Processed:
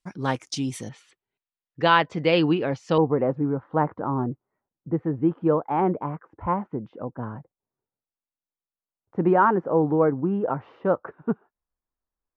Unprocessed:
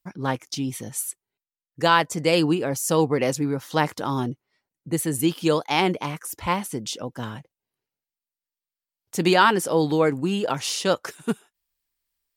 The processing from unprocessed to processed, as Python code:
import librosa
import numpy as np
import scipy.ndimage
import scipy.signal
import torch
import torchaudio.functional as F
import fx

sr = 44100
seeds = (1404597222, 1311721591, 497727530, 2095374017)

y = fx.lowpass(x, sr, hz=fx.steps((0.0, 9400.0), (0.89, 3600.0), (2.98, 1300.0)), slope=24)